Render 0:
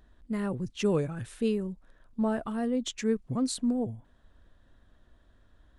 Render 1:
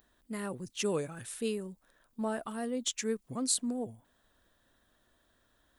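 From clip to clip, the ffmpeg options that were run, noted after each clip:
-af "aemphasis=mode=production:type=bsi,volume=-2.5dB"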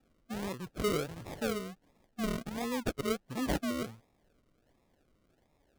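-af "acrusher=samples=41:mix=1:aa=0.000001:lfo=1:lforange=24.6:lforate=1.4"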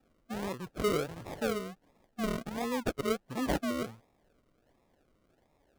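-af "equalizer=f=760:w=0.44:g=4,volume=-1dB"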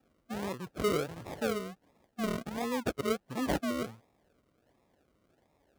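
-af "highpass=50"

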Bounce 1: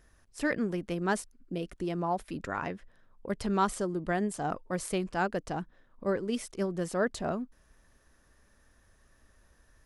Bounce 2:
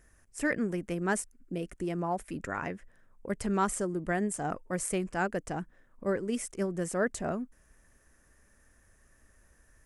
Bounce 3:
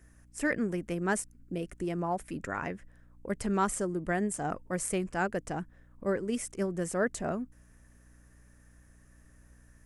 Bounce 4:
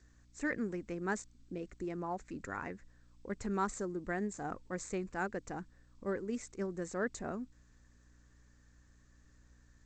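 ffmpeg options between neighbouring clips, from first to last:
-af "equalizer=f=1k:t=o:w=1:g=-3,equalizer=f=2k:t=o:w=1:g=4,equalizer=f=4k:t=o:w=1:g=-10,equalizer=f=8k:t=o:w=1:g=8"
-af "aeval=exprs='val(0)+0.00126*(sin(2*PI*60*n/s)+sin(2*PI*2*60*n/s)/2+sin(2*PI*3*60*n/s)/3+sin(2*PI*4*60*n/s)/4+sin(2*PI*5*60*n/s)/5)':c=same"
-af "equalizer=f=160:t=o:w=0.33:g=-6,equalizer=f=630:t=o:w=0.33:g=-6,equalizer=f=3.15k:t=o:w=0.33:g=-12,equalizer=f=5k:t=o:w=0.33:g=-11,aexciter=amount=2.3:drive=3.3:freq=3.8k,volume=-5dB" -ar 16000 -c:a g722

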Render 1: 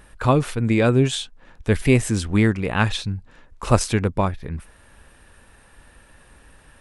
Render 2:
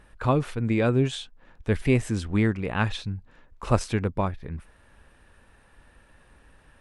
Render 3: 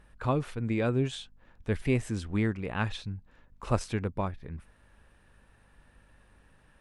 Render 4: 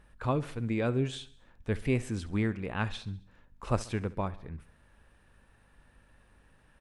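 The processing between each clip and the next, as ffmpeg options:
-af "highshelf=f=5.6k:g=-9.5,volume=-5dB"
-af "aeval=exprs='val(0)+0.00126*(sin(2*PI*50*n/s)+sin(2*PI*2*50*n/s)/2+sin(2*PI*3*50*n/s)/3+sin(2*PI*4*50*n/s)/4+sin(2*PI*5*50*n/s)/5)':c=same,volume=-5.5dB"
-af "aecho=1:1:68|136|204|272:0.112|0.0606|0.0327|0.0177,volume=-1.5dB"

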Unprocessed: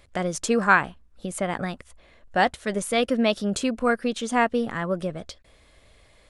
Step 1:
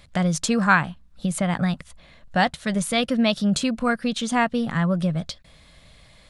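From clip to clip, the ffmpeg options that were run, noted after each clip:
-filter_complex "[0:a]asplit=2[a][b];[b]acompressor=threshold=-29dB:ratio=6,volume=-3dB[c];[a][c]amix=inputs=2:normalize=0,equalizer=f=160:t=o:w=0.67:g=11,equalizer=f=400:t=o:w=0.67:g=-8,equalizer=f=4k:t=o:w=0.67:g=5,volume=-1dB"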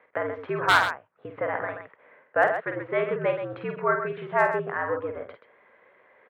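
-af "highpass=f=390:t=q:w=0.5412,highpass=f=390:t=q:w=1.307,lowpass=f=2.1k:t=q:w=0.5176,lowpass=f=2.1k:t=q:w=0.7071,lowpass=f=2.1k:t=q:w=1.932,afreqshift=-73,aeval=exprs='0.335*(abs(mod(val(0)/0.335+3,4)-2)-1)':c=same,aecho=1:1:49|129:0.501|0.355"

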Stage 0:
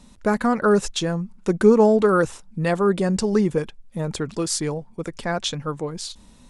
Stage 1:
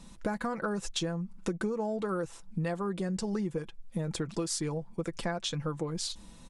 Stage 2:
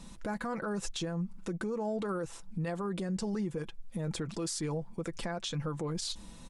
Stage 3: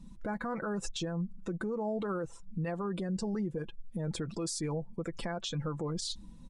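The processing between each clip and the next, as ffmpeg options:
-af "aecho=1:1:6:0.44,acompressor=threshold=-27dB:ratio=12,volume=-2dB"
-af "alimiter=level_in=5dB:limit=-24dB:level=0:latency=1:release=36,volume=-5dB,volume=2dB"
-af "afftdn=nr=15:nf=-48"

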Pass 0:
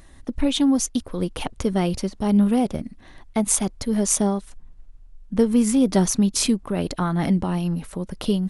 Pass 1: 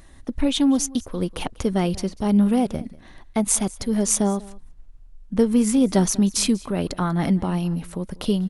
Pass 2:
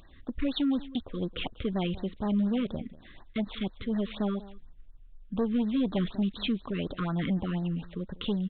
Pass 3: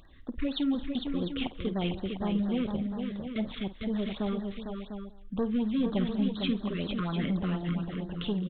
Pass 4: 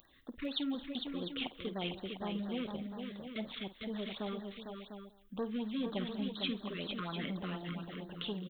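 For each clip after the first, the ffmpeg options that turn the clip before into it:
-af "aecho=1:1:192:0.0841"
-af "highshelf=f=2.7k:g=11,aresample=8000,asoftclip=type=tanh:threshold=-16dB,aresample=44100,afftfilt=real='re*(1-between(b*sr/1024,700*pow(2800/700,0.5+0.5*sin(2*PI*4.1*pts/sr))/1.41,700*pow(2800/700,0.5+0.5*sin(2*PI*4.1*pts/sr))*1.41))':imag='im*(1-between(b*sr/1024,700*pow(2800/700,0.5+0.5*sin(2*PI*4.1*pts/sr))/1.41,700*pow(2800/700,0.5+0.5*sin(2*PI*4.1*pts/sr))*1.41))':win_size=1024:overlap=0.75,volume=-6dB"
-af "aecho=1:1:51|218|453|700:0.188|0.106|0.501|0.335,volume=-1.5dB"
-af "aemphasis=mode=production:type=bsi,volume=-4.5dB"

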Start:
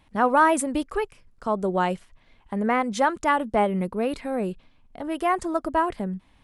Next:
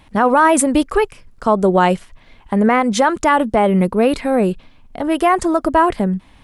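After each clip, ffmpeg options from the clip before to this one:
-af "alimiter=level_in=14.5dB:limit=-1dB:release=50:level=0:latency=1,volume=-3dB"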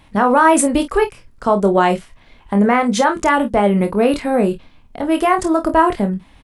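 -af "aecho=1:1:25|49:0.447|0.188,volume=-1dB"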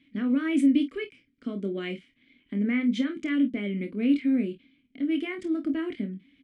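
-filter_complex "[0:a]asplit=3[a][b][c];[a]bandpass=f=270:t=q:w=8,volume=0dB[d];[b]bandpass=f=2.29k:t=q:w=8,volume=-6dB[e];[c]bandpass=f=3.01k:t=q:w=8,volume=-9dB[f];[d][e][f]amix=inputs=3:normalize=0"

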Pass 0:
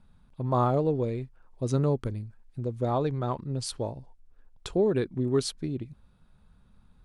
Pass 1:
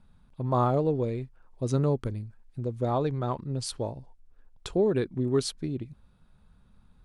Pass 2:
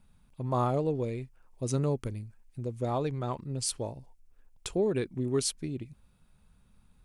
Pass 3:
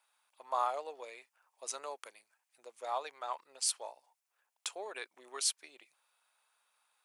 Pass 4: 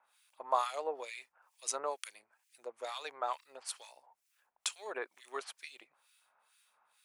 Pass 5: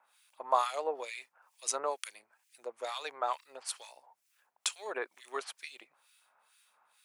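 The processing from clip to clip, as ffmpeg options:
-af anull
-af "aexciter=amount=1.6:drive=6:freq=2.1k,volume=-3.5dB"
-af "highpass=f=720:w=0.5412,highpass=f=720:w=1.3066"
-filter_complex "[0:a]acrossover=split=1700[a][b];[a]aeval=exprs='val(0)*(1-1/2+1/2*cos(2*PI*2.2*n/s))':c=same[c];[b]aeval=exprs='val(0)*(1-1/2-1/2*cos(2*PI*2.2*n/s))':c=same[d];[c][d]amix=inputs=2:normalize=0,volume=9dB"
-af "highpass=100,volume=3dB"

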